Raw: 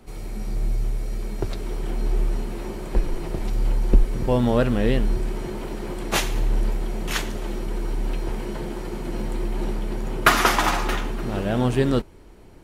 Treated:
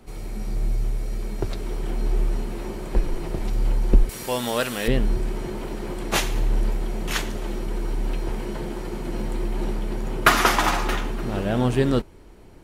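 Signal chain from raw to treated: 4.09–4.88 s: tilt EQ +4.5 dB/octave

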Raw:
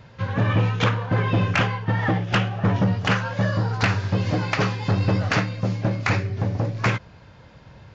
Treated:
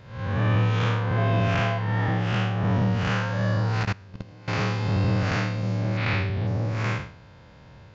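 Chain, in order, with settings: spectral blur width 178 ms; 1.16–1.77 s: whistle 680 Hz -29 dBFS; 3.83–4.48 s: level held to a coarse grid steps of 23 dB; 5.97–6.47 s: resonant low-pass 3.5 kHz, resonance Q 2.3

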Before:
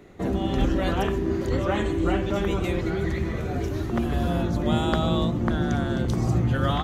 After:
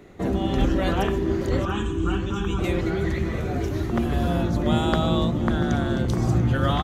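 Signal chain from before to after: 1.65–2.59 s: static phaser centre 3 kHz, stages 8; on a send: delay 688 ms -15.5 dB; on the sum: trim +1.5 dB

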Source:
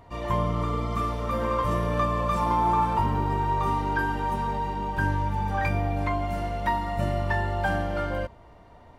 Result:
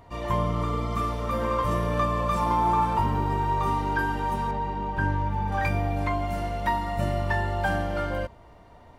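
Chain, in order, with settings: treble shelf 4.9 kHz +2.5 dB, from 4.51 s -10.5 dB, from 5.52 s +3.5 dB

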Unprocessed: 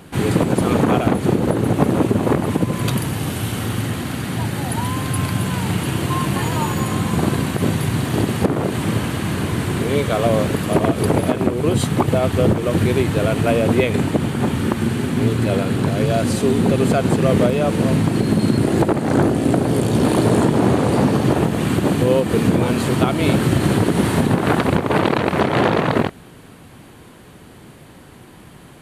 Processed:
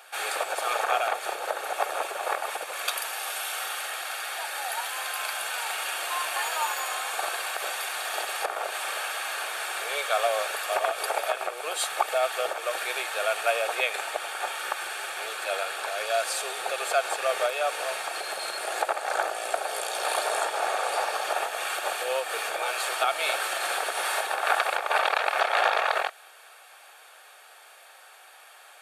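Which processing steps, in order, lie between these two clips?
inverse Chebyshev high-pass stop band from 270 Hz, stop band 50 dB; comb of notches 1 kHz

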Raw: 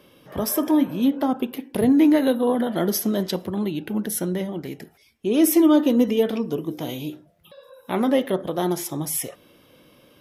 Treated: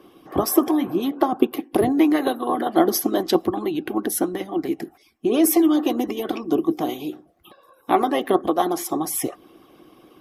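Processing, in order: harmonic-percussive split harmonic -17 dB; small resonant body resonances 330/750/1100 Hz, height 14 dB, ringing for 30 ms; trim +2.5 dB

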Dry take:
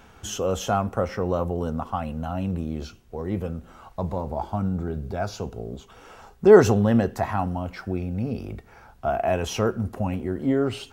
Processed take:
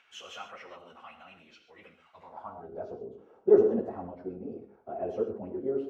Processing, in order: bass shelf 89 Hz -5.5 dB; gated-style reverb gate 280 ms flat, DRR 6.5 dB; band-pass sweep 2.4 kHz -> 400 Hz, 4.07–5.31 s; plain phase-vocoder stretch 0.54×

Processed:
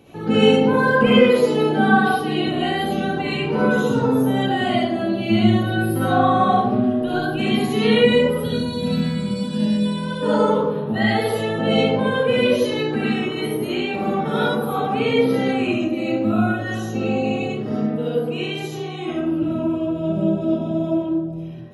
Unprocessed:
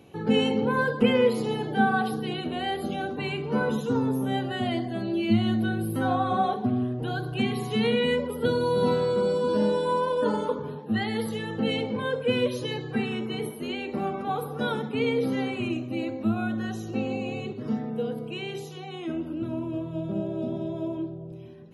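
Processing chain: 8.40–10.21 s: time-frequency box 270–1500 Hz -13 dB; 10.91–12.00 s: peaking EQ 660 Hz +12.5 dB 0.26 oct; 14.20–14.87 s: reverse; reverberation RT60 0.75 s, pre-delay 25 ms, DRR -7 dB; trim +1.5 dB

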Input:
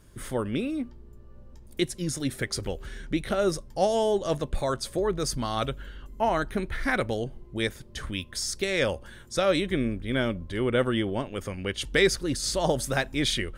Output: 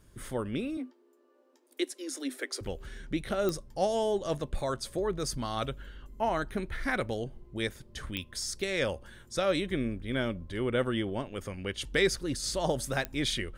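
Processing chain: 0.77–2.61 s: Chebyshev high-pass 250 Hz, order 10; clicks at 3.49/8.17/13.05 s, -13 dBFS; trim -4.5 dB

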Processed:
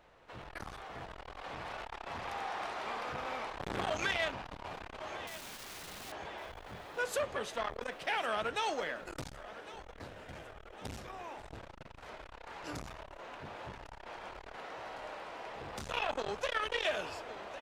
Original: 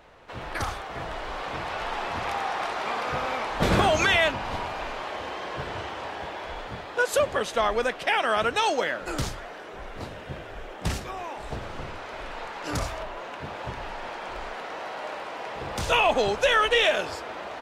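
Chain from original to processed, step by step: flange 0.24 Hz, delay 5.6 ms, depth 5.9 ms, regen -84%; 5.27–6.12 s: integer overflow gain 37 dB; on a send: feedback delay 1105 ms, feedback 56%, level -18 dB; on the sum: transformer saturation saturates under 1.5 kHz; trim -5 dB

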